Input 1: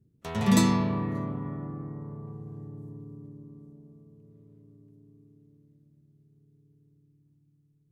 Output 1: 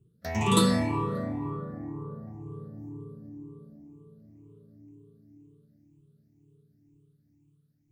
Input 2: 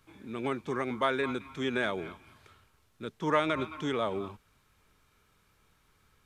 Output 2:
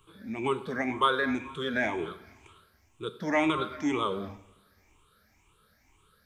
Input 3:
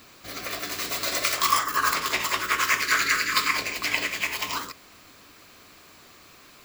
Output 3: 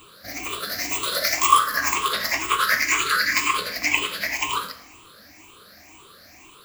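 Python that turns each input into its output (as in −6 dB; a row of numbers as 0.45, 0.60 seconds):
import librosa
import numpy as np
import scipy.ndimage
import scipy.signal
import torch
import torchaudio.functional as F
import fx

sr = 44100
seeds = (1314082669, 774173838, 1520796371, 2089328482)

y = fx.spec_ripple(x, sr, per_octave=0.67, drift_hz=2.0, depth_db=18)
y = fx.rev_double_slope(y, sr, seeds[0], early_s=0.63, late_s=1.7, knee_db=-18, drr_db=9.5)
y = y * librosa.db_to_amplitude(-1.5)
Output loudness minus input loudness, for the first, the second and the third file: −0.5, +2.5, +3.0 LU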